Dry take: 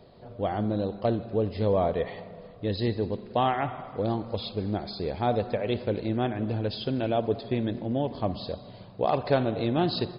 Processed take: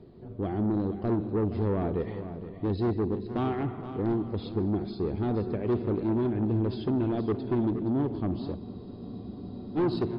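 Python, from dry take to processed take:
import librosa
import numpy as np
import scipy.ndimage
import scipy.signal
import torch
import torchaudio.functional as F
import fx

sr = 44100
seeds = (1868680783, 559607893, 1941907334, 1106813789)

p1 = fx.lowpass(x, sr, hz=1800.0, slope=6)
p2 = fx.low_shelf_res(p1, sr, hz=450.0, db=6.5, q=3.0)
p3 = p2 + 10.0 ** (-23.0 / 20.0) * np.pad(p2, (int(792 * sr / 1000.0), 0))[:len(p2)]
p4 = 10.0 ** (-18.5 / 20.0) * np.tanh(p3 / 10.0 ** (-18.5 / 20.0))
p5 = p4 + fx.echo_single(p4, sr, ms=470, db=-11.5, dry=0)
p6 = fx.spec_freeze(p5, sr, seeds[0], at_s=8.59, hold_s=1.17)
y = p6 * 10.0 ** (-3.5 / 20.0)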